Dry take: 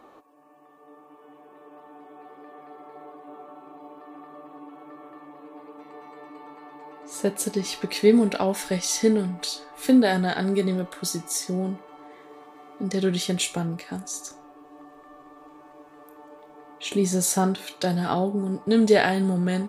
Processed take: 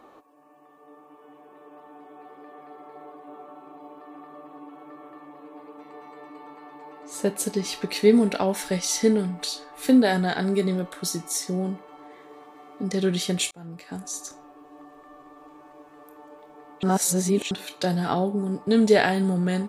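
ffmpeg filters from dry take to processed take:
-filter_complex "[0:a]asplit=4[a][b][c][d];[a]atrim=end=13.51,asetpts=PTS-STARTPTS,afade=t=out:st=13.506:d=0.004:c=hsin[e];[b]atrim=start=13.51:end=16.832,asetpts=PTS-STARTPTS,afade=t=in:d=0.56[f];[c]atrim=start=16.828:end=17.512,asetpts=PTS-STARTPTS,areverse[g];[d]atrim=start=17.508[h];[e][f]concat=n=2:v=0:a=1[i];[i][g]acrossfade=d=0.004:c1=hsin:c2=hsin[j];[j][h]acrossfade=d=0.004:c1=hsin:c2=hsin"

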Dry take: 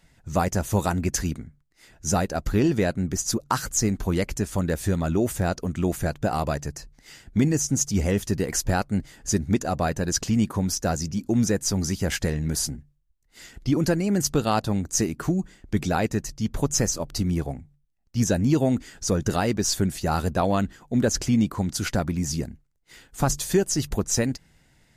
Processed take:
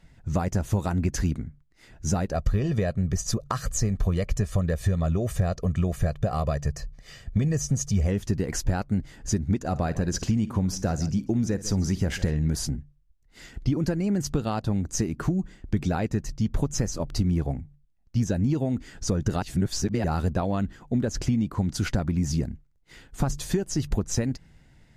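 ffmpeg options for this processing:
-filter_complex "[0:a]asettb=1/sr,asplit=3[a][b][c];[a]atrim=end=2.324[d];[b]atrim=start=2.32:end=8.07,asetpts=PTS-STARTPTS,afade=t=in:d=0.004:c=qsin,afade=t=out:st=5.746:d=0.004:c=qsin,aecho=1:1:1.7:0.65,atrim=end_sample=253575[e];[c]atrim=start=8.066[f];[d][e]acrossfade=d=0.004:c1=hsin:c2=qsin[g];[g][f]acrossfade=d=0.004:c1=qsin:c2=hsin,asettb=1/sr,asplit=3[h][i][j];[h]atrim=end=9.594[k];[i]atrim=start=9.59:end=12.31,asetpts=PTS-STARTPTS,afade=t=in:d=0.004:c=qsin,afade=t=out:st=2.716:d=0.004:c=qsin,aecho=1:1:54|146:0.126|0.106,atrim=end_sample=119952[l];[j]atrim=start=12.306[m];[k][l]acrossfade=d=0.004:c1=hsin:c2=qsin[n];[n][m]acrossfade=d=0.004:c1=qsin:c2=hsin,asplit=3[o][p][q];[o]atrim=end=19.422[r];[p]atrim=start=19.418:end=20.042,asetpts=PTS-STARTPTS,areverse[s];[q]atrim=start=20.038[t];[r][s]acrossfade=d=0.004:c1=hsin:c2=hsin[u];[u][t]acrossfade=d=0.004:c1=hsin:c2=hsin,highshelf=f=6.9k:g=-10,acompressor=threshold=-25dB:ratio=6,lowshelf=f=240:g=7"

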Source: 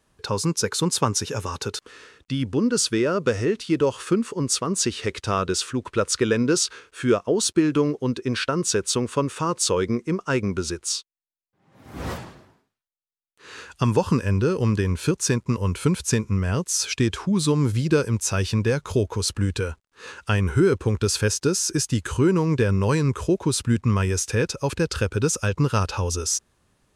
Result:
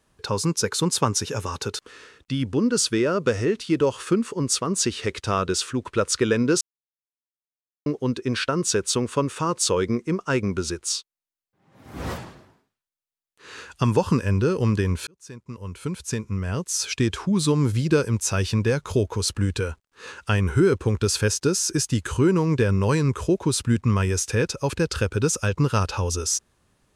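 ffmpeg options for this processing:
-filter_complex "[0:a]asplit=4[a][b][c][d];[a]atrim=end=6.61,asetpts=PTS-STARTPTS,afade=t=out:st=6.606:d=0.004:c=hsin[e];[b]atrim=start=6.61:end=7.86,asetpts=PTS-STARTPTS,volume=0[f];[c]atrim=start=7.86:end=15.07,asetpts=PTS-STARTPTS,afade=t=in:d=0.004:c=hsin,afade=t=out:st=7.206:d=0.004:c=hsin[g];[d]atrim=start=15.07,asetpts=PTS-STARTPTS,afade=t=in:d=2.13[h];[e][f][g][h]concat=n=4:v=0:a=1"

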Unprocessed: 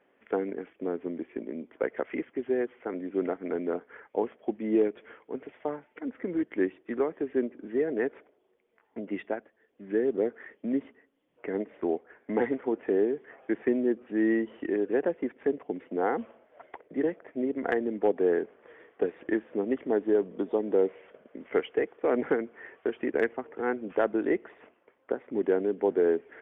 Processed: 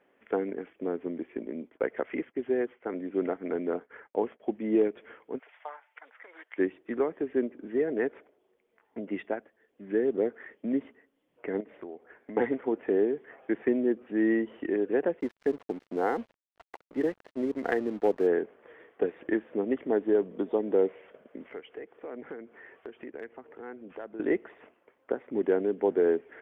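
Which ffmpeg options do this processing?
-filter_complex "[0:a]asettb=1/sr,asplit=3[a][b][c];[a]atrim=end=1.464[d];[b]atrim=start=1.46:end=4.4,asetpts=PTS-STARTPTS,afade=t=in:d=0.004:c=qsin,afade=t=out:st=2.936:d=0.004:c=qsin,agate=range=-33dB:threshold=-51dB:ratio=3:release=100:detection=peak[e];[c]atrim=start=4.396[f];[d][e]acrossfade=d=0.004:c1=hsin:c2=qsin[g];[g][f]acrossfade=d=0.004:c1=qsin:c2=hsin,asplit=3[h][i][j];[h]afade=t=out:st=5.38:d=0.02[k];[i]highpass=f=790:w=0.5412,highpass=f=790:w=1.3066,afade=t=in:st=5.38:d=0.02,afade=t=out:st=6.58:d=0.02[l];[j]afade=t=in:st=6.58:d=0.02[m];[k][l][m]amix=inputs=3:normalize=0,asettb=1/sr,asplit=3[n][o][p];[n]atrim=end=11.604[q];[o]atrim=start=11.6:end=12.37,asetpts=PTS-STARTPTS,afade=t=in:d=0.004:c=qsin,afade=t=out:st=0.766:d=0.004:c=qsin,acompressor=threshold=-38dB:ratio=6:attack=3.2:release=140:knee=1:detection=peak[r];[p]atrim=start=12.366[s];[q][r]acrossfade=d=0.004:c1=hsin:c2=qsin[t];[t][s]acrossfade=d=0.004:c1=qsin:c2=hsin,asplit=3[u][v][w];[u]afade=t=out:st=15.19:d=0.02[x];[v]aeval=exprs='sgn(val(0))*max(abs(val(0))-0.00376,0)':c=same,afade=t=in:st=15.19:d=0.02,afade=t=out:st=18.26:d=0.02[y];[w]afade=t=in:st=18.26:d=0.02[z];[x][y][z]amix=inputs=3:normalize=0,asettb=1/sr,asplit=3[aa][ab][ac];[aa]atrim=end=21.504[ad];[ab]atrim=start=21.5:end=24.2,asetpts=PTS-STARTPTS,afade=t=in:d=0.004:c=qsin,afade=t=out:st=2.696:d=0.004:c=qsin,acompressor=threshold=-49dB:ratio=2:attack=3.2:release=140:knee=1:detection=peak[ae];[ac]atrim=start=24.196[af];[ad][ae]acrossfade=d=0.004:c1=hsin:c2=qsin[ag];[ag][af]acrossfade=d=0.004:c1=qsin:c2=hsin"

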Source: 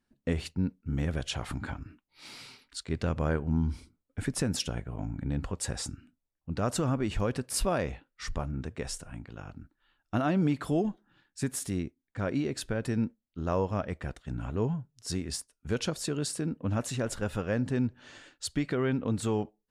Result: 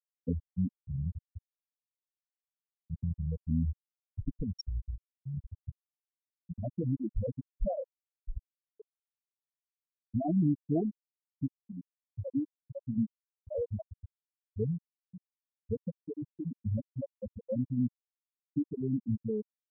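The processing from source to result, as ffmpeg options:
-filter_complex "[0:a]asettb=1/sr,asplit=3[a][b][c];[a]atrim=end=3.194[d];[b]atrim=start=3.19:end=4.98,asetpts=PTS-STARTPTS,afade=t=in:d=0.004:c=qsin,afade=t=out:st=1.786:d=0.004:c=qsin,asubboost=boost=11:cutoff=59[e];[c]atrim=start=4.976[f];[d][e]acrossfade=d=0.004:c1=hsin:c2=qsin[g];[g][f]acrossfade=d=0.004:c1=qsin:c2=hsin,bandreject=f=380:w=12,afftfilt=real='re*gte(hypot(re,im),0.251)':imag='im*gte(hypot(re,im),0.251)':win_size=1024:overlap=0.75,equalizer=f=1k:w=7.3:g=8"

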